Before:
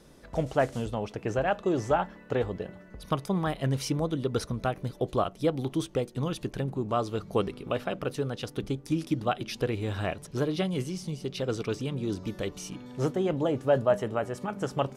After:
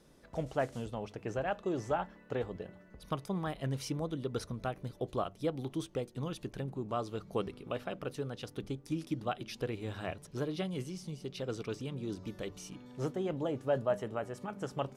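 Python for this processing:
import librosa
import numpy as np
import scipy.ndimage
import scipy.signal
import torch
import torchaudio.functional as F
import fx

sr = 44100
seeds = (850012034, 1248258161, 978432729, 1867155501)

y = fx.hum_notches(x, sr, base_hz=50, count=2)
y = F.gain(torch.from_numpy(y), -7.5).numpy()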